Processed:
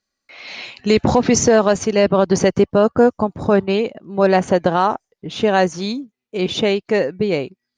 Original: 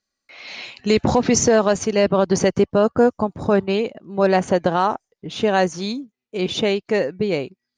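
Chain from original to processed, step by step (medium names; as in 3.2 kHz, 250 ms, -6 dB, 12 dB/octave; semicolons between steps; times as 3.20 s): treble shelf 7.6 kHz -4.5 dB; trim +2.5 dB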